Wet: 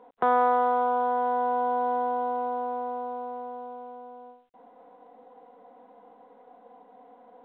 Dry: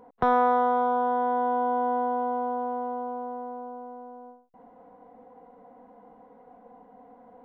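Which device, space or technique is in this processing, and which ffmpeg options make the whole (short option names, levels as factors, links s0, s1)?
telephone: -af "highpass=300,lowpass=3400" -ar 8000 -c:a pcm_mulaw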